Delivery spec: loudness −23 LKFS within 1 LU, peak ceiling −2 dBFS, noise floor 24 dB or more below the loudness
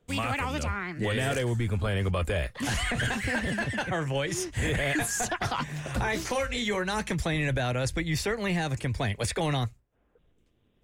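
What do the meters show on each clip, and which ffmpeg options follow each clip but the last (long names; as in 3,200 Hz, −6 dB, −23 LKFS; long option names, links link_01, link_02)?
integrated loudness −29.0 LKFS; sample peak −19.0 dBFS; target loudness −23.0 LKFS
→ -af "volume=6dB"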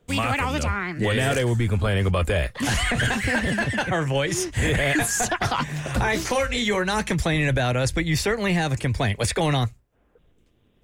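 integrated loudness −23.0 LKFS; sample peak −13.0 dBFS; background noise floor −62 dBFS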